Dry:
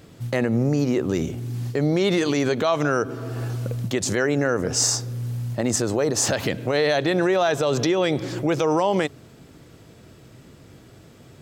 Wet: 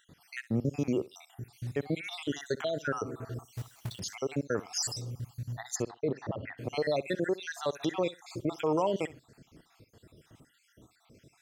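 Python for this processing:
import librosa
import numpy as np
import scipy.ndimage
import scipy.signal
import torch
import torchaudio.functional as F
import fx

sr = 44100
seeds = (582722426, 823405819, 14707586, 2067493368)

y = fx.spec_dropout(x, sr, seeds[0], share_pct=61)
y = fx.quant_companded(y, sr, bits=4, at=(3.55, 4.0))
y = fx.lowpass(y, sr, hz=fx.line((5.75, 4000.0), (6.57, 1800.0)), slope=24, at=(5.75, 6.57), fade=0.02)
y = fx.echo_feedback(y, sr, ms=63, feedback_pct=16, wet_db=-19)
y = y * 10.0 ** (-7.0 / 20.0)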